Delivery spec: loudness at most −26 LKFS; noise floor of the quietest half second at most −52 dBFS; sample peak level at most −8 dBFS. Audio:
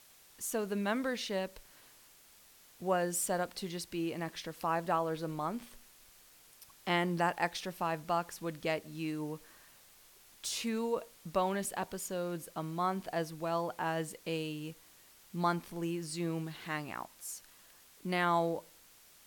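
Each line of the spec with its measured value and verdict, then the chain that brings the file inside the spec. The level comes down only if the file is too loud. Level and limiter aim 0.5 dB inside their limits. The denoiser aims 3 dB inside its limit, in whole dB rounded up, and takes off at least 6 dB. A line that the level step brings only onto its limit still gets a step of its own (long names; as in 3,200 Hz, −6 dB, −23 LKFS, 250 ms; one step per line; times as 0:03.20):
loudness −36.0 LKFS: in spec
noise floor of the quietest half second −61 dBFS: in spec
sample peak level −17.5 dBFS: in spec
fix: no processing needed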